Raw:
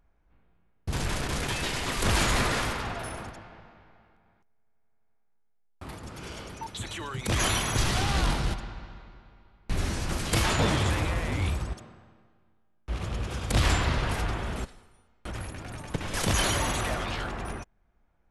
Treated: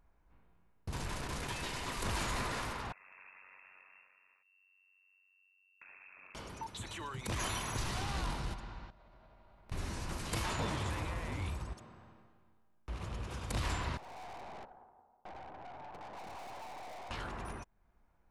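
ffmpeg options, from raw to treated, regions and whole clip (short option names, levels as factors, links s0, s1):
-filter_complex "[0:a]asettb=1/sr,asplit=3[s0][s1][s2];[s0]atrim=end=2.924[s3];[s1]atrim=start=2.92:end=6.35,asetpts=PTS-STARTPTS,afade=t=in:d=0.004:c=qsin,afade=t=out:st=3.426:d=0.004:c=qsin,lowpass=f=2300:t=q:w=0.5098,lowpass=f=2300:t=q:w=0.6013,lowpass=f=2300:t=q:w=0.9,lowpass=f=2300:t=q:w=2.563,afreqshift=-2700,aeval=exprs='val(0)*sin(2*PI*47*n/s)':c=same,acompressor=threshold=0.00251:ratio=4:attack=3.2:release=140:knee=1:detection=peak[s4];[s2]atrim=start=6.346[s5];[s3][s4]acrossfade=d=0.004:c1=hsin:c2=qsin[s6];[s6][s5]acrossfade=d=0.004:c1=qsin:c2=hsin,asettb=1/sr,asplit=3[s7][s8][s9];[s7]atrim=end=8.904[s10];[s8]atrim=start=8.9:end=9.72,asetpts=PTS-STARTPTS,afade=t=in:d=0.004:c=qsin,afade=t=out:st=0.816:d=0.004:c=qsin,equalizer=f=630:t=o:w=0.33:g=13.5,acompressor=threshold=0.00178:ratio=8:attack=3.2:release=140:knee=1:detection=peak[s11];[s9]atrim=start=9.716[s12];[s10][s11]acrossfade=d=0.004:c1=hsin:c2=qsin[s13];[s13][s12]acrossfade=d=0.004:c1=qsin:c2=hsin,asettb=1/sr,asplit=3[s14][s15][s16];[s14]atrim=end=13.974[s17];[s15]atrim=start=13.97:end=17.11,asetpts=PTS-STARTPTS,afade=t=in:d=0.004:c=qsin,afade=t=out:st=3.136:d=0.004:c=qsin,lowpass=f=770:t=q:w=5.9,aemphasis=mode=production:type=bsi,aeval=exprs='(tanh(126*val(0)+0.65)-tanh(0.65))/126':c=same[s18];[s16]atrim=start=17.106[s19];[s17][s18]acrossfade=d=0.004:c1=hsin:c2=qsin[s20];[s20][s19]acrossfade=d=0.004:c1=qsin:c2=hsin,equalizer=f=990:w=4.5:g=5.5,bandreject=f=3300:w=29,acompressor=threshold=0.00355:ratio=1.5,volume=0.794"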